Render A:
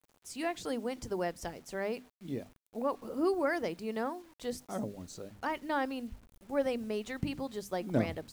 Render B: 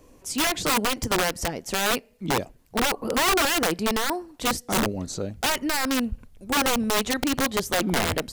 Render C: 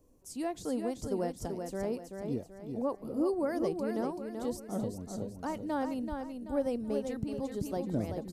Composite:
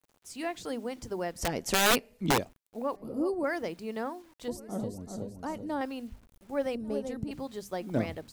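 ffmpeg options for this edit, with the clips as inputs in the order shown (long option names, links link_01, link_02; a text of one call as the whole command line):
ffmpeg -i take0.wav -i take1.wav -i take2.wav -filter_complex "[2:a]asplit=3[link_01][link_02][link_03];[0:a]asplit=5[link_04][link_05][link_06][link_07][link_08];[link_04]atrim=end=1.56[link_09];[1:a]atrim=start=1.32:end=2.54[link_10];[link_05]atrim=start=2.3:end=2.962[link_11];[link_01]atrim=start=2.958:end=3.442[link_12];[link_06]atrim=start=3.438:end=4.482[link_13];[link_02]atrim=start=4.478:end=5.812[link_14];[link_07]atrim=start=5.808:end=6.752[link_15];[link_03]atrim=start=6.748:end=7.312[link_16];[link_08]atrim=start=7.308[link_17];[link_09][link_10]acrossfade=duration=0.24:curve1=tri:curve2=tri[link_18];[link_18][link_11]acrossfade=duration=0.24:curve1=tri:curve2=tri[link_19];[link_19][link_12]acrossfade=duration=0.004:curve1=hsin:curve2=hsin[link_20];[link_20][link_13]acrossfade=duration=0.004:curve1=hsin:curve2=hsin[link_21];[link_21][link_14]acrossfade=duration=0.004:curve1=hsin:curve2=hsin[link_22];[link_22][link_15]acrossfade=duration=0.004:curve1=hsin:curve2=hsin[link_23];[link_23][link_16]acrossfade=duration=0.004:curve1=hsin:curve2=hsin[link_24];[link_24][link_17]acrossfade=duration=0.004:curve1=hsin:curve2=hsin" out.wav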